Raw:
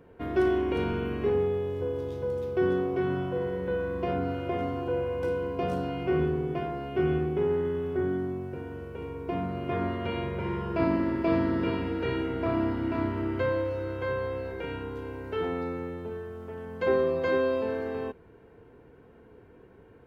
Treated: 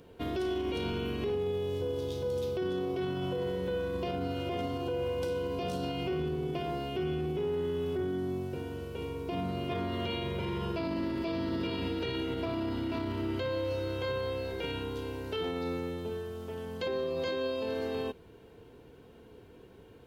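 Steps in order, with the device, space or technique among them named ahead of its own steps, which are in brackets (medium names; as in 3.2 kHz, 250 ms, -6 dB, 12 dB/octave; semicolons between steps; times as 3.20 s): over-bright horn tweeter (resonant high shelf 2.6 kHz +10.5 dB, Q 1.5; peak limiter -25.5 dBFS, peak gain reduction 11.5 dB)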